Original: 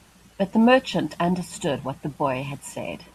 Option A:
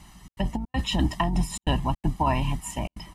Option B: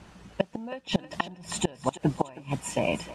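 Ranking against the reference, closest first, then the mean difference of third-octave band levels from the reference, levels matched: A, B; 7.0 dB, 9.5 dB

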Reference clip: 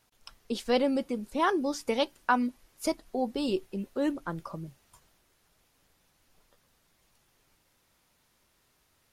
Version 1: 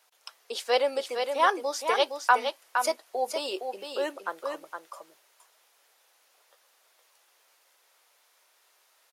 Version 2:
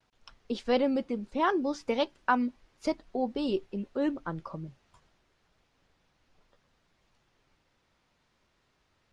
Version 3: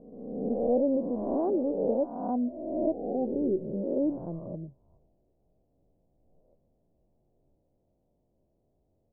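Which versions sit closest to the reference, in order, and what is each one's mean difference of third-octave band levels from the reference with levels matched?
2, 1, 3; 3.5 dB, 8.5 dB, 13.5 dB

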